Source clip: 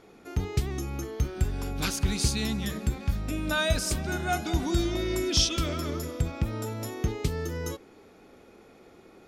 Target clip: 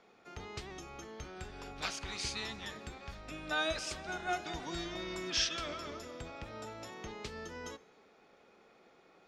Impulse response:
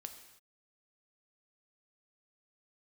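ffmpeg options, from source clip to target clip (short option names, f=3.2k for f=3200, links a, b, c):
-filter_complex "[0:a]acrossover=split=450 6900:gain=0.158 1 0.0631[a][b][c];[a][b][c]amix=inputs=3:normalize=0,asplit=2[d][e];[e]asetrate=22050,aresample=44100,atempo=2,volume=-8dB[f];[d][f]amix=inputs=2:normalize=0,asplit=2[g][h];[1:a]atrim=start_sample=2205[i];[h][i]afir=irnorm=-1:irlink=0,volume=-8dB[j];[g][j]amix=inputs=2:normalize=0,volume=-7.5dB"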